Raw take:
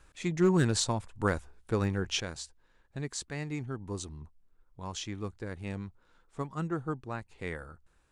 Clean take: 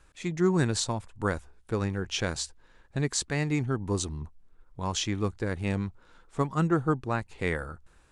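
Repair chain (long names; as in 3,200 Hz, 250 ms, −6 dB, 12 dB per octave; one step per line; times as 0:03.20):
clipped peaks rebuilt −16.5 dBFS
level correction +8.5 dB, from 0:02.20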